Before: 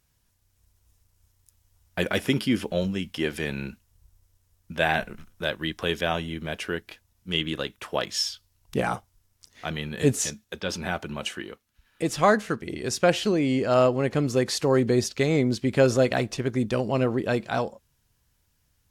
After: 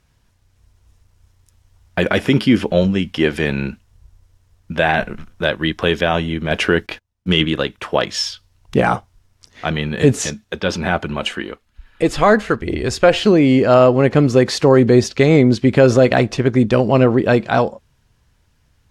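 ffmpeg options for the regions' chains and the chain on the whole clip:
-filter_complex "[0:a]asettb=1/sr,asplit=3[a][b][c];[a]atrim=end=6.514[d];[b]atrim=start=6.51:end=7.45,asetpts=PTS-STARTPTS,afade=t=in:d=0.004:c=qsin,afade=t=out:st=0.936:d=0.004:c=qsin,agate=range=-26dB:threshold=-55dB:ratio=16:release=100:detection=peak,acontrast=58[e];[c]atrim=start=7.446[f];[d][e]acrossfade=d=0.004:c1=hsin:c2=qsin[g];[g][f]acrossfade=d=0.004:c1=qsin:c2=hsin,asettb=1/sr,asplit=3[h][i][j];[h]atrim=end=10.924[k];[i]atrim=start=10.92:end=13.2,asetpts=PTS-STARTPTS,afade=t=in:d=0.004:c=qsin,afade=t=out:st=2.276:d=0.004:c=qsin,bandreject=f=5.8k:w=13,asubboost=boost=12:cutoff=55,aphaser=in_gain=1:out_gain=1:delay=4.4:decay=0.24:speed=1.1:type=sinusoidal[l];[j]atrim=start=13.196[m];[k][l]acrossfade=d=0.004:c1=hsin:c2=qsin[n];[n][m]acrossfade=d=0.004:c1=qsin:c2=hsin,aemphasis=mode=reproduction:type=50fm,alimiter=level_in=12dB:limit=-1dB:release=50:level=0:latency=1,volume=-1dB"

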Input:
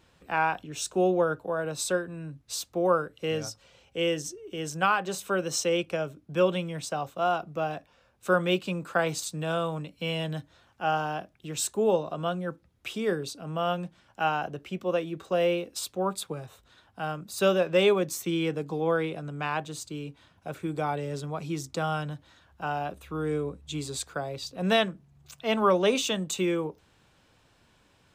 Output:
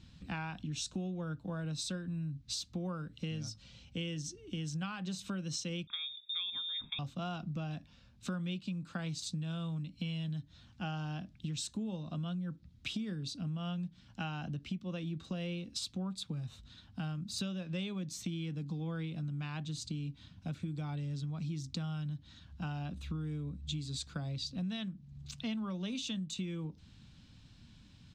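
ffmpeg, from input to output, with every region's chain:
-filter_complex "[0:a]asettb=1/sr,asplit=3[a][b][c];[a]atrim=end=5.874[d];[b]atrim=start=5.87:end=6.99,asetpts=PTS-STARTPTS,afade=t=in:d=0.004:c=qsin,afade=t=out:st=1.116:d=0.004:c=qsin,asuperstop=centerf=760:order=8:qfactor=1.1,lowpass=f=3.2k:t=q:w=0.5098,lowpass=f=3.2k:t=q:w=0.6013,lowpass=f=3.2k:t=q:w=0.9,lowpass=f=3.2k:t=q:w=2.563,afreqshift=-3800[e];[c]atrim=start=6.986[f];[d][e]acrossfade=d=0.004:c1=hsin:c2=qsin[g];[g][f]acrossfade=d=0.004:c1=qsin:c2=hsin,firequalizer=gain_entry='entry(230,0);entry(400,-21);entry(4000,-4);entry(13000,-26)':delay=0.05:min_phase=1,acompressor=threshold=-45dB:ratio=12,volume=9.5dB"

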